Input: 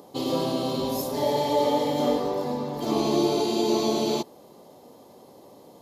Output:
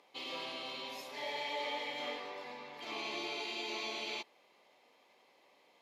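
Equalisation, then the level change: band-pass filter 2.3 kHz, Q 4.1; +5.0 dB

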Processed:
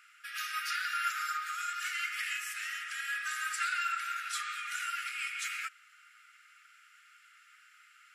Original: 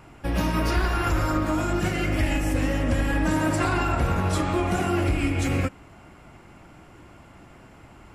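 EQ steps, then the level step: brick-wall FIR high-pass 1.2 kHz; -3.0 dB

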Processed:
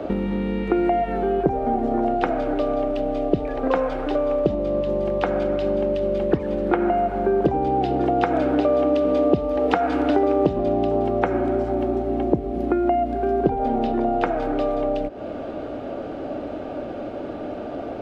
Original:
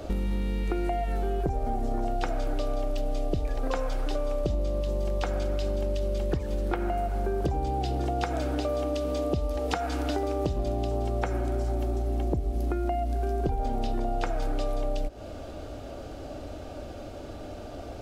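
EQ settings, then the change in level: three-band isolator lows -21 dB, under 170 Hz, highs -21 dB, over 3.1 kHz; bass shelf 470 Hz +6 dB; +8.0 dB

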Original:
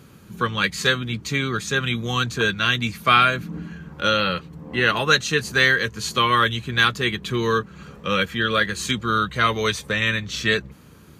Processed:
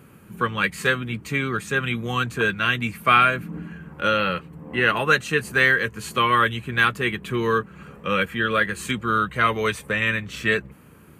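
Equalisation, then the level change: bass shelf 110 Hz -5 dB; high-order bell 4.8 kHz -10.5 dB 1.2 oct; 0.0 dB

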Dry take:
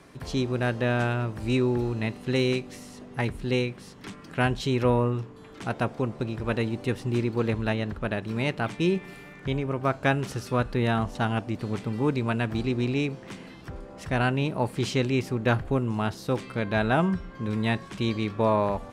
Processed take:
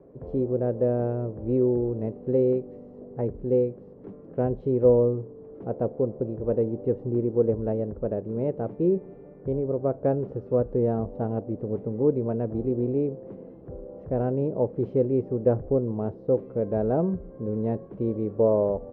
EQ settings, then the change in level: resonant low-pass 500 Hz, resonance Q 3.6; -3.0 dB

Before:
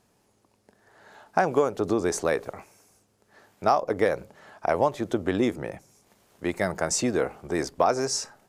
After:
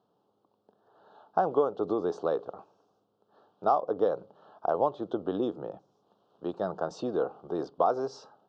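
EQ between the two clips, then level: Butterworth band-stop 2.1 kHz, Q 0.96; cabinet simulation 230–3100 Hz, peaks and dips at 240 Hz -7 dB, 360 Hz -4 dB, 600 Hz -4 dB, 950 Hz -4 dB, 1.6 kHz -4 dB, 2.5 kHz -5 dB; 0.0 dB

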